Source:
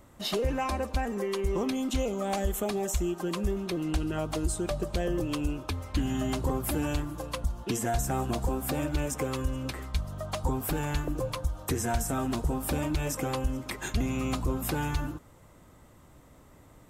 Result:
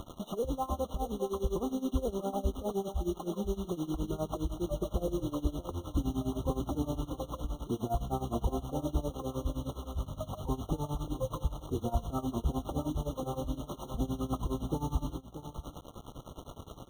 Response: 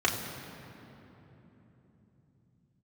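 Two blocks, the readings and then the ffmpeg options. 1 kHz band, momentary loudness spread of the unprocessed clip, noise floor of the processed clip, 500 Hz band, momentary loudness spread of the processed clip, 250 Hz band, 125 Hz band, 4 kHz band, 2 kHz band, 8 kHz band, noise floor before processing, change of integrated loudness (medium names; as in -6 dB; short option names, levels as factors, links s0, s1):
-4.0 dB, 4 LU, -52 dBFS, -3.5 dB, 7 LU, -3.5 dB, -3.5 dB, -9.5 dB, under -30 dB, -13.0 dB, -55 dBFS, -4.5 dB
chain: -filter_complex "[0:a]lowpass=1300,acompressor=mode=upward:threshold=0.0224:ratio=2.5,acrusher=bits=6:mix=0:aa=0.000001,tremolo=f=9.7:d=0.88,asplit=2[s0][s1];[s1]aecho=0:1:631:0.282[s2];[s0][s2]amix=inputs=2:normalize=0,afftfilt=real='re*eq(mod(floor(b*sr/1024/1400),2),0)':imag='im*eq(mod(floor(b*sr/1024/1400),2),0)':win_size=1024:overlap=0.75"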